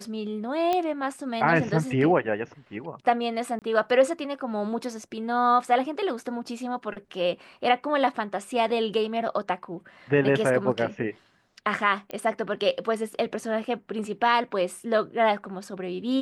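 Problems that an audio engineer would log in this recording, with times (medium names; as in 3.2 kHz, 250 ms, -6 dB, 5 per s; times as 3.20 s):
0.73 s: pop -13 dBFS
3.59–3.62 s: dropout 28 ms
12.11 s: pop -21 dBFS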